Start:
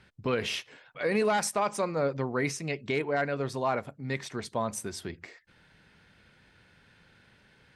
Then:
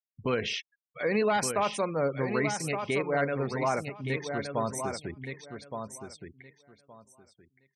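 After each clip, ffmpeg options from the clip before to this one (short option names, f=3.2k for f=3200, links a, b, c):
-af "anlmdn=0.01,afftfilt=real='re*gte(hypot(re,im),0.0112)':imag='im*gte(hypot(re,im),0.0112)':win_size=1024:overlap=0.75,aecho=1:1:1169|2338|3507:0.447|0.0804|0.0145"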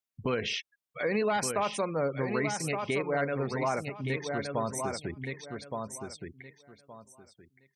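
-af "acompressor=threshold=-37dB:ratio=1.5,volume=3dB"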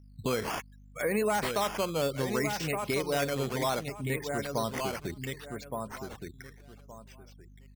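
-af "aresample=22050,aresample=44100,aeval=exprs='val(0)+0.00251*(sin(2*PI*50*n/s)+sin(2*PI*2*50*n/s)/2+sin(2*PI*3*50*n/s)/3+sin(2*PI*4*50*n/s)/4+sin(2*PI*5*50*n/s)/5)':c=same,acrusher=samples=8:mix=1:aa=0.000001:lfo=1:lforange=8:lforate=0.66"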